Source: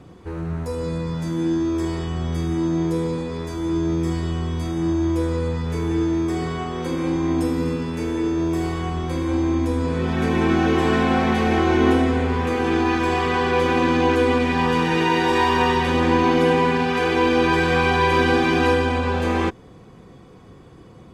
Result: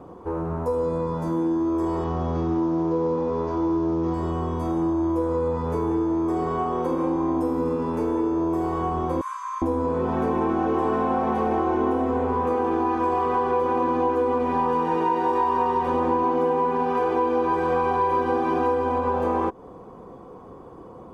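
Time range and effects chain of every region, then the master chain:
0:02.04–0:04.14: variable-slope delta modulation 32 kbit/s + double-tracking delay 12 ms −12.5 dB
0:09.21–0:09.62: linear-phase brick-wall high-pass 960 Hz + high shelf with overshoot 5,300 Hz +6 dB, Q 1.5
whole clip: octave-band graphic EQ 125/250/500/1,000/2,000/4,000/8,000 Hz −5/+3/+7/+12/−8/−9/−6 dB; downward compressor 4 to 1, threshold −19 dBFS; level −2 dB

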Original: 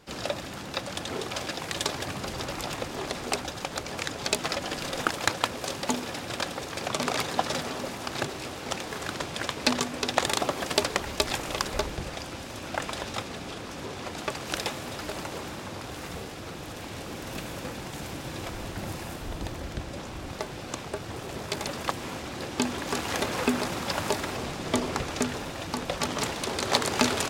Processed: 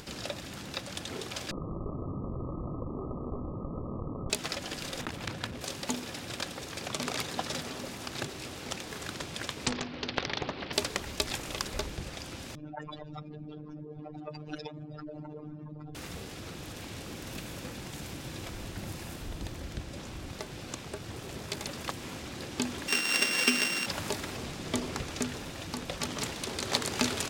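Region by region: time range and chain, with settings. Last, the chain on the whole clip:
0:01.51–0:04.30: lower of the sound and its delayed copy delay 0.57 ms + linear-phase brick-wall low-pass 1,300 Hz + envelope flattener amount 70%
0:05.01–0:05.61: bass and treble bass +8 dB, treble −7 dB + saturating transformer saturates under 2,900 Hz
0:09.66–0:10.73: Chebyshev low-pass filter 4,300 Hz, order 5 + highs frequency-modulated by the lows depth 0.87 ms
0:12.55–0:15.95: expanding power law on the bin magnitudes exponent 3.3 + phases set to zero 151 Hz
0:22.88–0:23.86: samples sorted by size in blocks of 16 samples + high-pass filter 180 Hz 24 dB per octave + flat-topped bell 3,200 Hz +9.5 dB 3 octaves
whole clip: parametric band 820 Hz −6 dB 2.2 octaves; upward compression, threshold −34 dBFS; level −3 dB

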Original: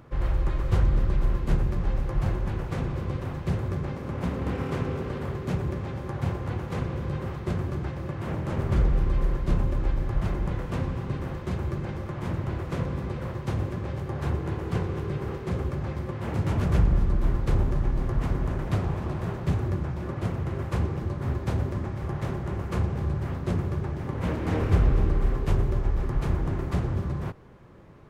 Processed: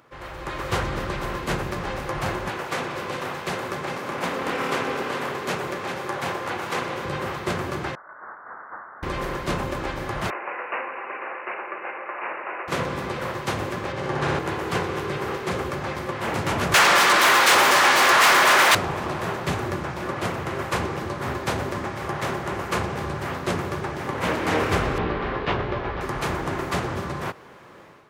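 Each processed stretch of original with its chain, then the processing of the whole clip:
0:02.50–0:07.05: high-pass filter 270 Hz 6 dB per octave + single-tap delay 403 ms −9 dB
0:07.95–0:09.03: Butterworth high-pass 1,800 Hz 48 dB per octave + voice inversion scrambler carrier 3,200 Hz
0:10.30–0:12.68: Bessel high-pass filter 610 Hz, order 4 + bad sample-rate conversion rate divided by 8×, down none, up filtered
0:13.92–0:14.39: high-frequency loss of the air 58 metres + flutter between parallel walls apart 10.6 metres, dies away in 1.3 s
0:16.74–0:18.75: spectral tilt +4.5 dB per octave + mid-hump overdrive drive 29 dB, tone 2,800 Hz, clips at −18 dBFS
0:24.98–0:26.01: low-pass filter 3,900 Hz 24 dB per octave + double-tracking delay 17 ms −7 dB
whole clip: high-pass filter 980 Hz 6 dB per octave; automatic gain control gain up to 10.5 dB; level +3.5 dB

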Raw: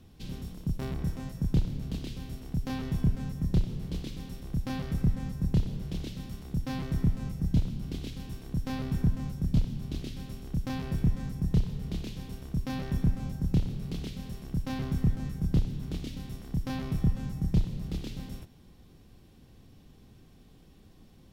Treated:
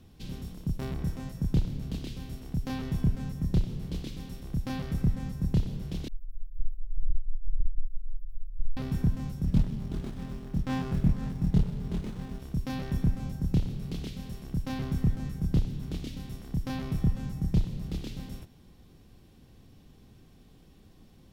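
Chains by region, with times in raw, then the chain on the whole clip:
0:06.08–0:08.77: inverse Chebyshev band-stop filter 110–3,500 Hz, stop band 80 dB + spectral tilt −4.5 dB per octave + downward compressor, threshold −17 dBFS
0:09.45–0:12.40: double-tracking delay 23 ms −3 dB + windowed peak hold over 17 samples
whole clip: no processing

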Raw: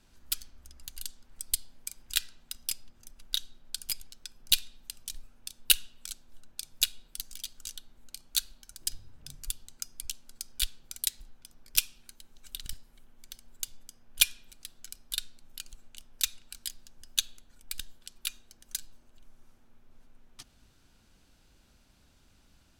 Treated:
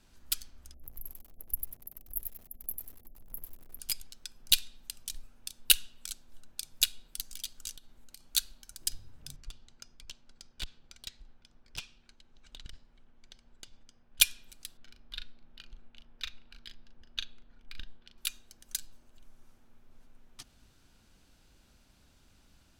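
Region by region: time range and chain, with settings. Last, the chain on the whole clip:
0:00.74–0:03.80: linear-phase brick-wall band-stop 790–11,000 Hz + feedback echo at a low word length 95 ms, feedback 35%, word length 9 bits, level −4 dB
0:07.75–0:08.22: gain into a clipping stage and back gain 30 dB + downward compressor 3 to 1, threshold −46 dBFS
0:09.36–0:14.20: high-frequency loss of the air 140 metres + tube saturation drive 30 dB, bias 0.5
0:14.77–0:18.18: high-frequency loss of the air 290 metres + double-tracking delay 38 ms −8 dB
whole clip: no processing

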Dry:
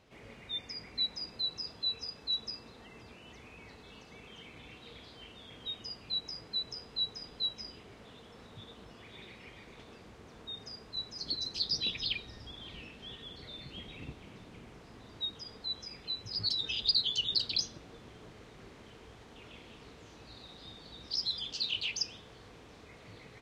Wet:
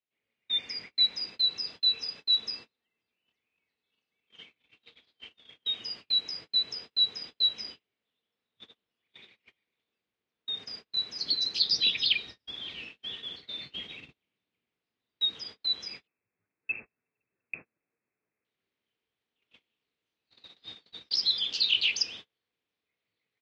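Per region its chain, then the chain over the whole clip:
0:16.07–0:18.45: linear-phase brick-wall low-pass 2,700 Hz + low-shelf EQ 75 Hz −7 dB
whole clip: meter weighting curve D; noise gate −40 dBFS, range −36 dB; high-shelf EQ 6,400 Hz −11 dB

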